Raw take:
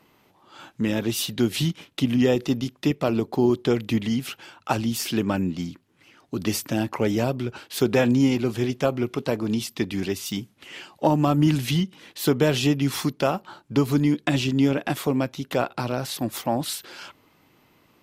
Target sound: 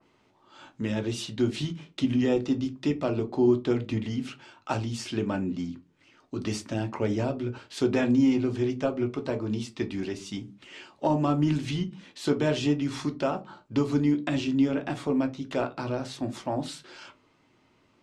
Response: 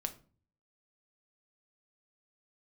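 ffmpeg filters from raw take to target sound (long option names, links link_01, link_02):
-filter_complex "[0:a]lowpass=frequency=8200:width=0.5412,lowpass=frequency=8200:width=1.3066[link_01];[1:a]atrim=start_sample=2205,asetrate=79380,aresample=44100[link_02];[link_01][link_02]afir=irnorm=-1:irlink=0,adynamicequalizer=threshold=0.00447:dfrequency=2200:dqfactor=0.7:tfrequency=2200:tqfactor=0.7:attack=5:release=100:ratio=0.375:range=2:mode=cutabove:tftype=highshelf"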